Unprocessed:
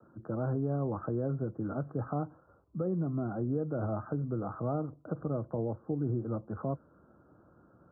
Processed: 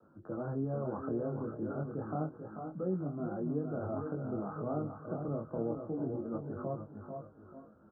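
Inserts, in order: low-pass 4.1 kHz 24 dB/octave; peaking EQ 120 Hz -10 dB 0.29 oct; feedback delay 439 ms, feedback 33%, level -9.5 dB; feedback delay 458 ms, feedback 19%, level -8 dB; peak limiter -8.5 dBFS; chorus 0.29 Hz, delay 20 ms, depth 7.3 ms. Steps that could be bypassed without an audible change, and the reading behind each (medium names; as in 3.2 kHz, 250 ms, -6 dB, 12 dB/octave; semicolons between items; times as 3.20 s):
low-pass 4.1 kHz: input has nothing above 1.4 kHz; peak limiter -8.5 dBFS: peak at its input -20.0 dBFS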